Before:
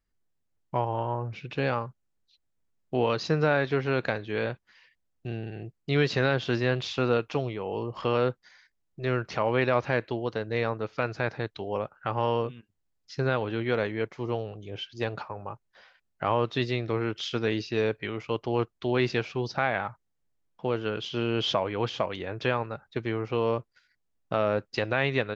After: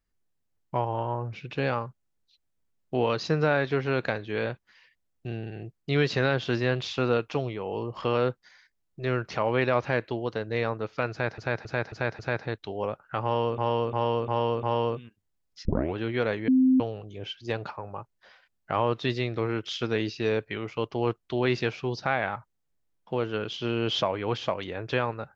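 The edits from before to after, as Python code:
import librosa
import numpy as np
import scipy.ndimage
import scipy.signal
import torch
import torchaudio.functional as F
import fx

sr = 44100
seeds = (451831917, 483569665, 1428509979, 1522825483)

y = fx.edit(x, sr, fx.repeat(start_s=11.11, length_s=0.27, count=5),
    fx.repeat(start_s=12.15, length_s=0.35, count=5),
    fx.tape_start(start_s=13.17, length_s=0.3),
    fx.bleep(start_s=14.0, length_s=0.32, hz=259.0, db=-16.5), tone=tone)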